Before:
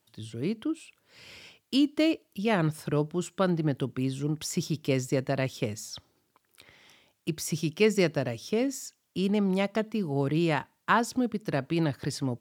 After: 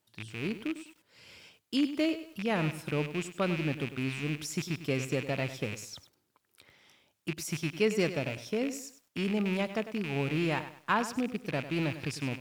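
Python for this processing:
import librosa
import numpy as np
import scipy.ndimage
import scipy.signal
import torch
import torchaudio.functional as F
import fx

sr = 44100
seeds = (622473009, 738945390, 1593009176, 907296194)

y = fx.rattle_buzz(x, sr, strikes_db=-36.0, level_db=-23.0)
y = fx.echo_crushed(y, sr, ms=100, feedback_pct=35, bits=8, wet_db=-12)
y = y * librosa.db_to_amplitude(-4.5)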